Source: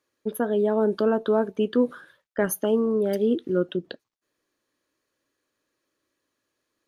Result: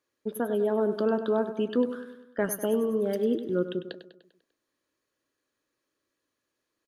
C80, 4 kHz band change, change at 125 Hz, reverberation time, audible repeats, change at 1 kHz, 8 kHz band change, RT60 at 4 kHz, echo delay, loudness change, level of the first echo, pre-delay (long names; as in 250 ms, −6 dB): no reverb audible, −3.5 dB, −4.0 dB, no reverb audible, 5, −3.5 dB, −3.5 dB, no reverb audible, 99 ms, −3.5 dB, −11.5 dB, no reverb audible